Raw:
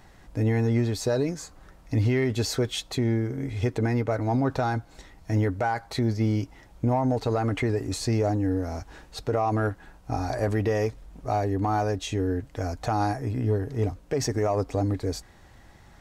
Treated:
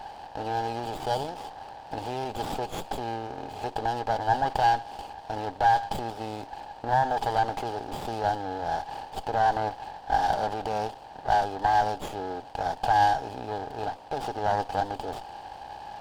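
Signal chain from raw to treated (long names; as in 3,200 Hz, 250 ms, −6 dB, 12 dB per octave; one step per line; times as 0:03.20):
compressor on every frequency bin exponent 0.6
pair of resonant band-passes 1,800 Hz, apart 2.2 octaves
low-pass that shuts in the quiet parts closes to 2,900 Hz, open at −23.5 dBFS
windowed peak hold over 9 samples
level +8.5 dB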